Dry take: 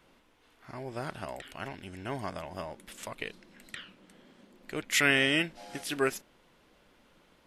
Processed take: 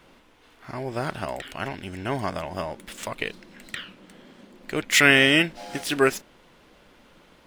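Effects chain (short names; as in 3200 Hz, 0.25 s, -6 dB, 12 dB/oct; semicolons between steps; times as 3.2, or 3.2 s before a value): median filter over 3 samples; gain +8.5 dB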